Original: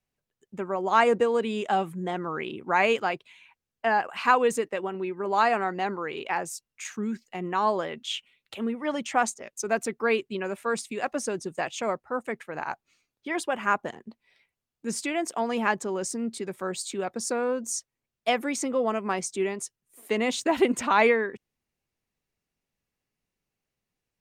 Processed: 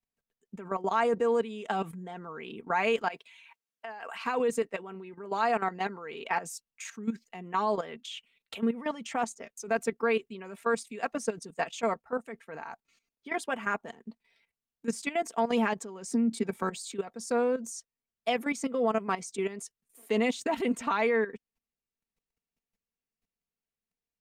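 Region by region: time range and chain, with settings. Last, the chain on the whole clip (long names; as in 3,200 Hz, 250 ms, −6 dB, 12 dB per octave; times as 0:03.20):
0:03.08–0:04.24: high-pass filter 550 Hz 6 dB per octave + compressor whose output falls as the input rises −35 dBFS
0:16.08–0:16.70: hollow resonant body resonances 240/850/2,300 Hz, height 8 dB, ringing for 50 ms + multiband upward and downward compressor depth 70%
whole clip: output level in coarse steps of 14 dB; comb filter 4.4 ms, depth 49%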